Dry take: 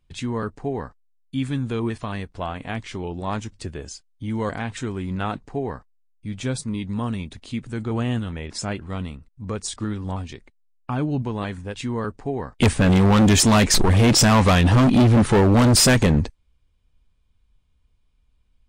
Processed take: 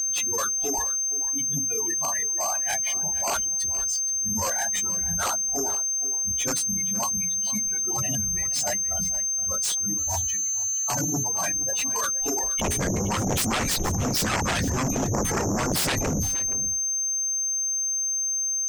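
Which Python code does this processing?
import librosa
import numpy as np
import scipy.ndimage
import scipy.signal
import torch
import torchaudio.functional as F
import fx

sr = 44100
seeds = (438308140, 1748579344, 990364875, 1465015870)

p1 = fx.phase_scramble(x, sr, seeds[0], window_ms=50)
p2 = fx.spec_gate(p1, sr, threshold_db=-20, keep='strong')
p3 = fx.highpass(p2, sr, hz=fx.line((0.81, 210.0), (2.46, 75.0)), slope=6, at=(0.81, 2.46), fade=0.02)
p4 = fx.noise_reduce_blind(p3, sr, reduce_db=21)
p5 = fx.hpss(p4, sr, part='harmonic', gain_db=-10)
p6 = p5 + 10.0 ** (-31.0 / 20.0) * np.sin(2.0 * np.pi * 6300.0 * np.arange(len(p5)) / sr)
p7 = fx.over_compress(p6, sr, threshold_db=-28.0, ratio=-0.5)
p8 = p6 + (p7 * librosa.db_to_amplitude(1.0))
p9 = fx.hum_notches(p8, sr, base_hz=60, count=7)
p10 = fx.cheby_harmonics(p9, sr, harmonics=(2, 3, 7, 8), levels_db=(-12, -10, -15, -31), full_scale_db=-4.0)
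p11 = 10.0 ** (-9.5 / 20.0) * np.tanh(p10 / 10.0 ** (-9.5 / 20.0))
p12 = p11 + fx.echo_single(p11, sr, ms=471, db=-15.0, dry=0)
p13 = fx.band_widen(p12, sr, depth_pct=40, at=(9.98, 11.24))
y = p13 * librosa.db_to_amplitude(-1.5)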